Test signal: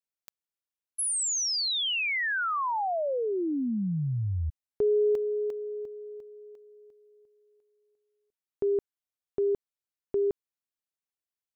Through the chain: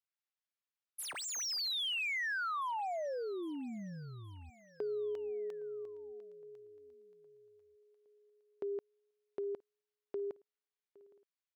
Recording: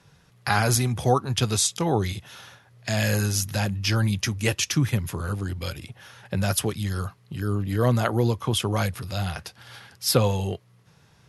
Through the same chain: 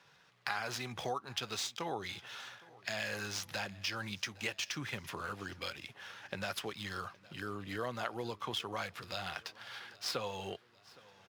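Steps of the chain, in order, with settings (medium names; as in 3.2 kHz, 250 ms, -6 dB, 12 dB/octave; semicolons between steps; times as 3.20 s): median filter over 5 samples; high-pass 1.2 kHz 6 dB/octave; treble shelf 9.1 kHz -12 dB; compression 3:1, threshold -38 dBFS; on a send: feedback delay 814 ms, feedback 58%, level -23 dB; on the sum: trim +1 dB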